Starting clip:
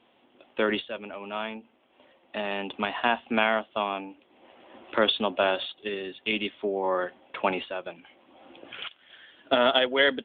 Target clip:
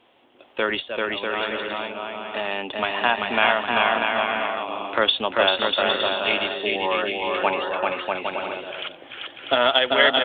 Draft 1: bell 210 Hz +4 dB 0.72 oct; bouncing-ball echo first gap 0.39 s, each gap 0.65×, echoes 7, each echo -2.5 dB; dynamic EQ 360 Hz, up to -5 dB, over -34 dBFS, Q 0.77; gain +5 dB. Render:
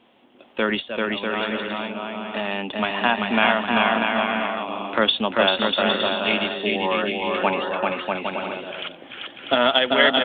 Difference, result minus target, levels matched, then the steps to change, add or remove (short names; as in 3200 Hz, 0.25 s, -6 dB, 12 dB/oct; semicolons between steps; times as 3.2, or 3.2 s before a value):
250 Hz band +6.5 dB
change: bell 210 Hz -6.5 dB 0.72 oct